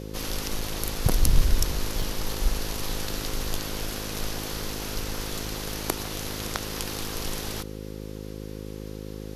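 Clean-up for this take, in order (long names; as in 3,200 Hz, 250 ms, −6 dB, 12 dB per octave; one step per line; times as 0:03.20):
hum removal 52.5 Hz, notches 10
repair the gap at 0:00.61/0:02.02/0:05.46, 3.1 ms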